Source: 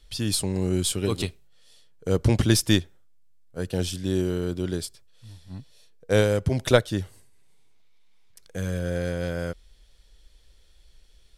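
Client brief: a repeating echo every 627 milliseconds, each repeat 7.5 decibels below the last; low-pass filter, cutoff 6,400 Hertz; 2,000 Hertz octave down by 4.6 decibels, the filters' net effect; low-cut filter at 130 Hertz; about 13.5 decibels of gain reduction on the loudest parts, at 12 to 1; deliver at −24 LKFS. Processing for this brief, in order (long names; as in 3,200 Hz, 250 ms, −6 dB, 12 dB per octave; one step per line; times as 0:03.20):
high-pass filter 130 Hz
low-pass filter 6,400 Hz
parametric band 2,000 Hz −6.5 dB
downward compressor 12 to 1, threshold −25 dBFS
repeating echo 627 ms, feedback 42%, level −7.5 dB
level +9 dB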